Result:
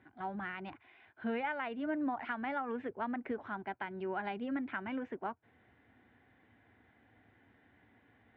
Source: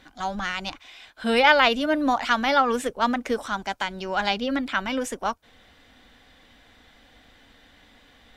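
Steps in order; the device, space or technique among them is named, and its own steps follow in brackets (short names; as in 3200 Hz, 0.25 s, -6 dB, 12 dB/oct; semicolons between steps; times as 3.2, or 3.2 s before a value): bass amplifier (compressor 4:1, threshold -23 dBFS, peak gain reduction 10.5 dB; speaker cabinet 76–2100 Hz, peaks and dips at 110 Hz +9 dB, 370 Hz +7 dB, 530 Hz -7 dB, 1200 Hz -6 dB); gain -9 dB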